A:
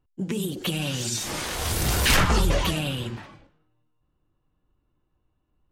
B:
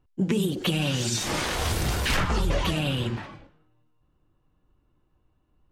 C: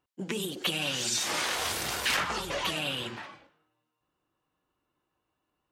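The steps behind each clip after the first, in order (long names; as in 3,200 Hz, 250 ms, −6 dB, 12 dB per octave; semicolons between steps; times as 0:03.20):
high-shelf EQ 6,800 Hz −9 dB; speech leveller 0.5 s
high-pass filter 830 Hz 6 dB per octave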